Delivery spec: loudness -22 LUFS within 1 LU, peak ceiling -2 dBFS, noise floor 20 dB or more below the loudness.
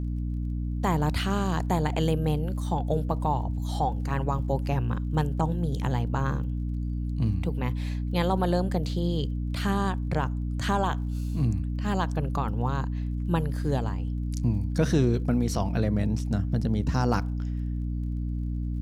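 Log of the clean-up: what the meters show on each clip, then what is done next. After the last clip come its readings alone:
ticks 25/s; hum 60 Hz; harmonics up to 300 Hz; hum level -27 dBFS; loudness -28.0 LUFS; peak -11.5 dBFS; loudness target -22.0 LUFS
-> de-click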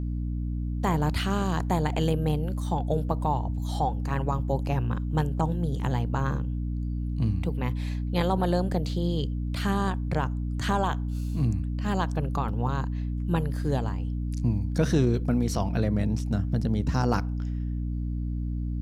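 ticks 0.58/s; hum 60 Hz; harmonics up to 300 Hz; hum level -27 dBFS
-> notches 60/120/180/240/300 Hz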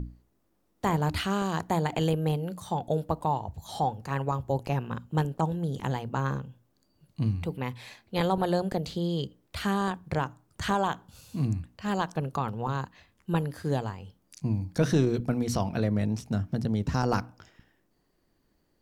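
hum none; loudness -30.0 LUFS; peak -12.0 dBFS; loudness target -22.0 LUFS
-> gain +8 dB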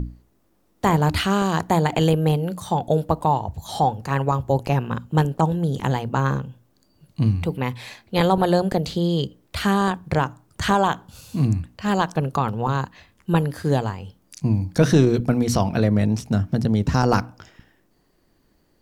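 loudness -22.0 LUFS; peak -4.0 dBFS; noise floor -63 dBFS

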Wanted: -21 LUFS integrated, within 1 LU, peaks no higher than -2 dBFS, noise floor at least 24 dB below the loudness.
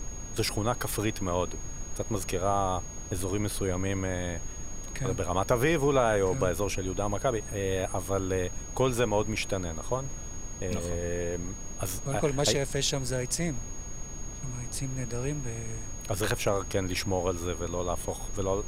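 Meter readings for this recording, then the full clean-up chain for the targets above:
steady tone 6600 Hz; tone level -42 dBFS; noise floor -40 dBFS; noise floor target -55 dBFS; loudness -30.5 LUFS; peak -10.0 dBFS; loudness target -21.0 LUFS
-> notch 6600 Hz, Q 30; noise print and reduce 15 dB; gain +9.5 dB; limiter -2 dBFS

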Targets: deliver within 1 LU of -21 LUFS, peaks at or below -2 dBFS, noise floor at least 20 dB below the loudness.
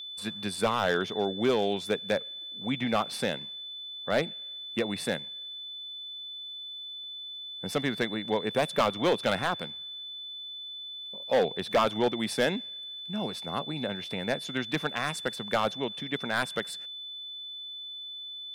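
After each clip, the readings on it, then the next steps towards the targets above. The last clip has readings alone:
clipped 0.6%; flat tops at -18.0 dBFS; steady tone 3500 Hz; tone level -38 dBFS; loudness -31.0 LUFS; peak -18.0 dBFS; loudness target -21.0 LUFS
-> clip repair -18 dBFS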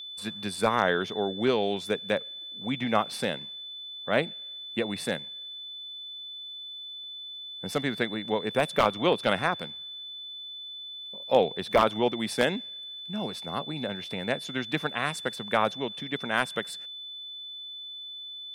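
clipped 0.0%; steady tone 3500 Hz; tone level -38 dBFS
-> notch 3500 Hz, Q 30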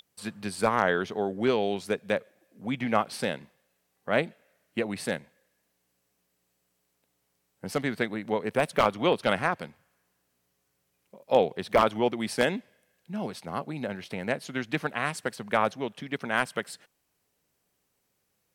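steady tone none; loudness -29.0 LUFS; peak -8.5 dBFS; loudness target -21.0 LUFS
-> gain +8 dB; limiter -2 dBFS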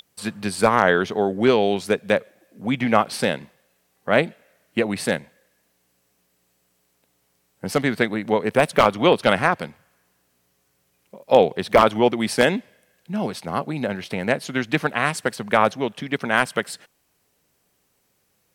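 loudness -21.5 LUFS; peak -2.0 dBFS; noise floor -68 dBFS

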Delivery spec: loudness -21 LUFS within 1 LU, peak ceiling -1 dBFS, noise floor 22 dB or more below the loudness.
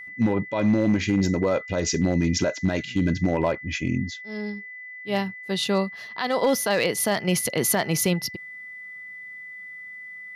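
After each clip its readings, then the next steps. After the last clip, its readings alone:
clipped 0.4%; flat tops at -13.5 dBFS; steady tone 2000 Hz; tone level -37 dBFS; loudness -24.5 LUFS; peak -13.5 dBFS; loudness target -21.0 LUFS
-> clip repair -13.5 dBFS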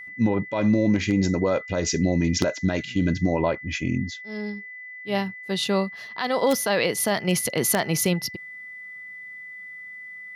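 clipped 0.0%; steady tone 2000 Hz; tone level -37 dBFS
-> notch 2000 Hz, Q 30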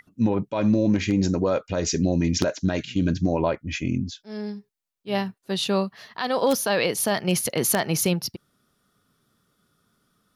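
steady tone none; loudness -24.0 LUFS; peak -4.5 dBFS; loudness target -21.0 LUFS
-> gain +3 dB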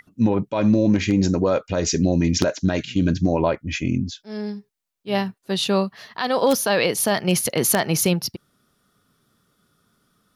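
loudness -21.0 LUFS; peak -1.5 dBFS; noise floor -71 dBFS

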